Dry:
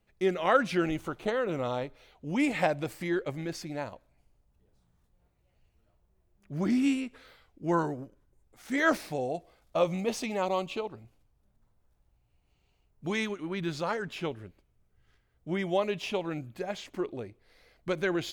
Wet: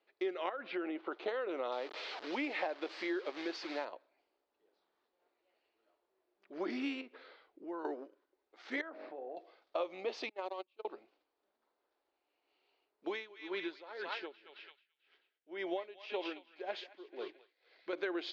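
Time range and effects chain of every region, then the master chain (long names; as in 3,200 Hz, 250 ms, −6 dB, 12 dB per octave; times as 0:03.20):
0:00.49–0:01.12: downward compressor, threshold −28 dBFS + high-frequency loss of the air 360 metres
0:01.72–0:03.85: linear delta modulator 64 kbit/s, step −38 dBFS + one half of a high-frequency compander encoder only
0:07.01–0:07.85: spectral tilt −2 dB per octave + downward compressor 4 to 1, threshold −39 dBFS
0:08.81–0:09.37: low-pass filter 1,400 Hz + hum removal 48.41 Hz, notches 16 + downward compressor 20 to 1, threshold −39 dBFS
0:10.29–0:10.85: mu-law and A-law mismatch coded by mu + noise gate −27 dBFS, range −45 dB + compressor whose output falls as the input rises −39 dBFS
0:13.06–0:17.93: notch filter 1,200 Hz, Q 11 + feedback echo with a band-pass in the loop 219 ms, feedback 43%, band-pass 2,800 Hz, level −3 dB + tremolo with a sine in dB 1.9 Hz, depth 20 dB
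whole clip: elliptic band-pass filter 340–4,500 Hz, stop band 40 dB; downward compressor 5 to 1, threshold −34 dBFS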